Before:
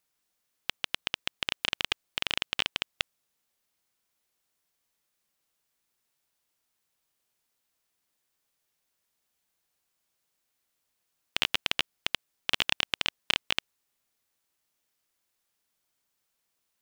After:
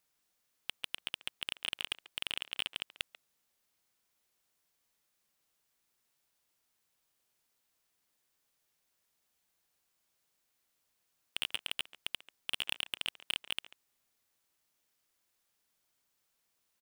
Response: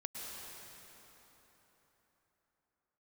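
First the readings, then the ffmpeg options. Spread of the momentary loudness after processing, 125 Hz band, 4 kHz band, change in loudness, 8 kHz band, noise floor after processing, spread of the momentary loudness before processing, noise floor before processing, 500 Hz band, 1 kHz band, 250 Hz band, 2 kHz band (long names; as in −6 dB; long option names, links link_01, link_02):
6 LU, −12.0 dB, −7.0 dB, −7.5 dB, −4.0 dB, −80 dBFS, 8 LU, −80 dBFS, −12.0 dB, −12.0 dB, −12.0 dB, −9.0 dB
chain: -filter_complex "[0:a]asplit=2[link_01][link_02];[link_02]adelay=140,highpass=300,lowpass=3400,asoftclip=type=hard:threshold=-13.5dB,volume=-24dB[link_03];[link_01][link_03]amix=inputs=2:normalize=0,asoftclip=type=tanh:threshold=-20dB"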